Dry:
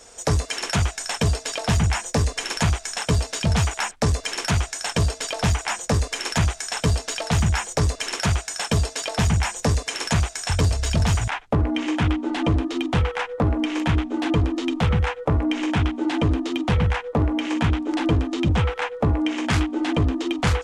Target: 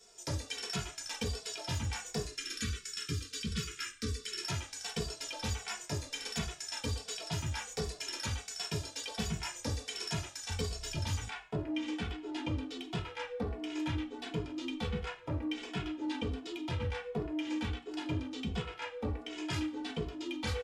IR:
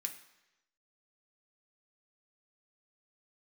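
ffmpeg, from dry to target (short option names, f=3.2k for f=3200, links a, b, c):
-filter_complex "[0:a]asettb=1/sr,asplit=3[a][b][c];[a]atrim=end=2.244[d];[b]atrim=start=2.24:end=4.43,asetpts=PTS-STARTPTS,afade=t=in:d=0.004:c=qsin,afade=t=out:st=2.186:d=0.004:c=qsin,asuperstop=centerf=730:order=8:qfactor=1[e];[c]atrim=start=4.426[f];[d][e]acrossfade=d=0.004:c1=hsin:c2=qsin[g];[g][f]acrossfade=d=0.004:c1=qsin:c2=hsin[h];[1:a]atrim=start_sample=2205,asetrate=88200,aresample=44100[i];[h][i]afir=irnorm=-1:irlink=0,asplit=2[j][k];[k]adelay=2.3,afreqshift=-1.4[l];[j][l]amix=inputs=2:normalize=1"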